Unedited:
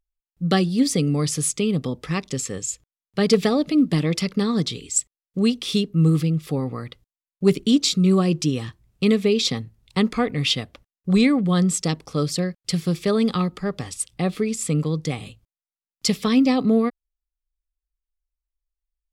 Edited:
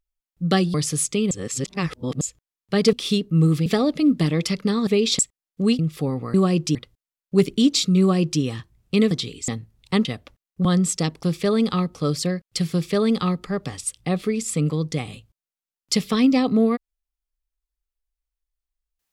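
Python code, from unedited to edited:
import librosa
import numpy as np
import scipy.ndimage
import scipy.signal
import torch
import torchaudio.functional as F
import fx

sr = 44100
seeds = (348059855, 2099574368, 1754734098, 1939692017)

y = fx.edit(x, sr, fx.cut(start_s=0.74, length_s=0.45),
    fx.reverse_span(start_s=1.76, length_s=0.9),
    fx.swap(start_s=4.59, length_s=0.37, other_s=9.2, other_length_s=0.32),
    fx.move(start_s=5.56, length_s=0.73, to_s=3.38),
    fx.duplicate(start_s=8.09, length_s=0.41, to_s=6.84),
    fx.cut(start_s=10.09, length_s=0.44),
    fx.cut(start_s=11.13, length_s=0.37),
    fx.duplicate(start_s=12.85, length_s=0.72, to_s=12.08), tone=tone)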